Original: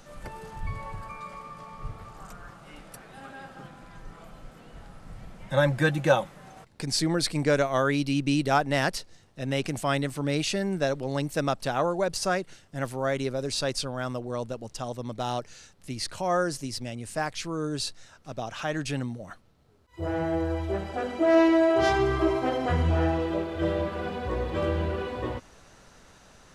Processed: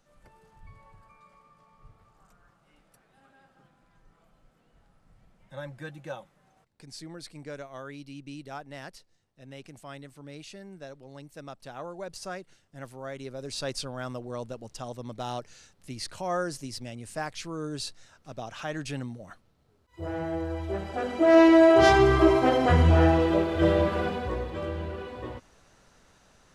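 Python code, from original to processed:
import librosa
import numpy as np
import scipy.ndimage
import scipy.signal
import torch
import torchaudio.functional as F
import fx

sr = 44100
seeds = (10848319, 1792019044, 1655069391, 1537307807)

y = fx.gain(x, sr, db=fx.line((11.36, -17.0), (12.13, -11.0), (13.18, -11.0), (13.69, -4.0), (20.5, -4.0), (21.65, 5.0), (23.98, 5.0), (24.59, -6.0)))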